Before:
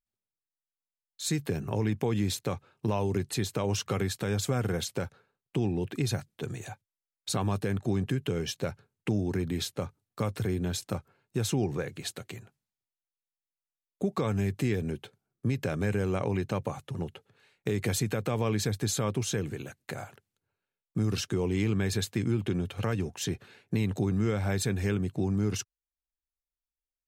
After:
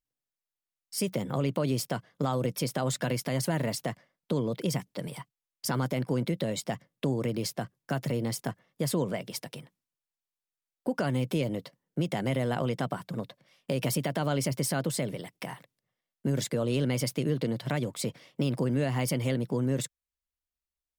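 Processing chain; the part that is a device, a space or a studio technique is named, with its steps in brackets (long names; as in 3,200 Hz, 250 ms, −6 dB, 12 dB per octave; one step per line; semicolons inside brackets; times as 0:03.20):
nightcore (speed change +29%)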